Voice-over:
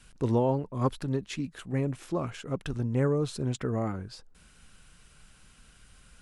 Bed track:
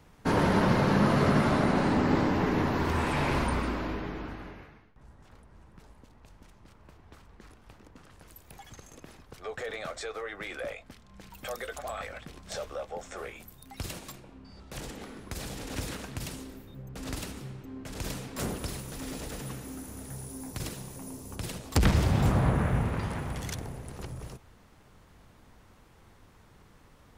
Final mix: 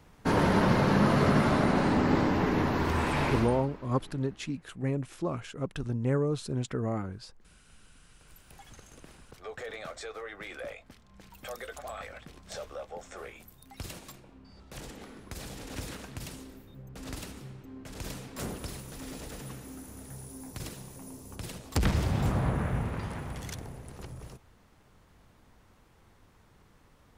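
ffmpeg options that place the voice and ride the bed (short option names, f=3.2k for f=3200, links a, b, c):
-filter_complex "[0:a]adelay=3100,volume=-1.5dB[a];[1:a]volume=13dB,afade=t=out:st=3.25:d=0.41:silence=0.149624,afade=t=in:st=8.01:d=0.62:silence=0.223872[b];[a][b]amix=inputs=2:normalize=0"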